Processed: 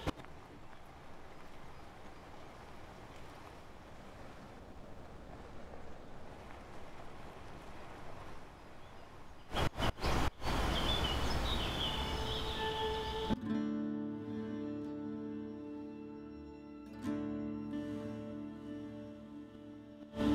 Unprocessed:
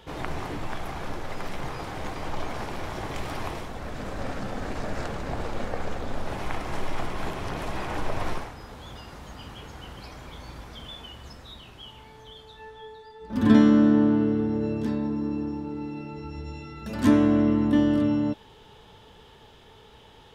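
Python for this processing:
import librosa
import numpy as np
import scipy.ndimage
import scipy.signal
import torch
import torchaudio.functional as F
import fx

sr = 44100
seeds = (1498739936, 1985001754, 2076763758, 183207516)

y = fx.median_filter(x, sr, points=25, at=(4.59, 5.33))
y = fx.echo_diffused(y, sr, ms=935, feedback_pct=51, wet_db=-4.0)
y = fx.gate_flip(y, sr, shuts_db=-25.0, range_db=-25)
y = F.gain(torch.from_numpy(y), 4.5).numpy()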